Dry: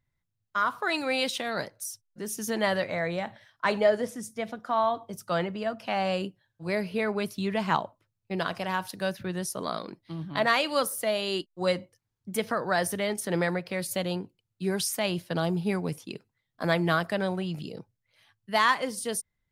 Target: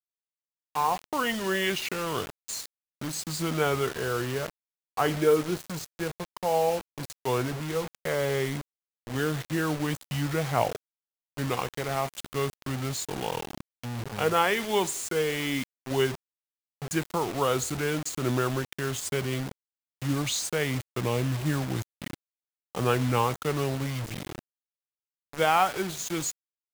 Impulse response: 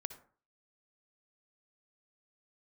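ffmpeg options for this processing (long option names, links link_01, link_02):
-af "asetrate=32193,aresample=44100,acrusher=bits=5:mix=0:aa=0.000001"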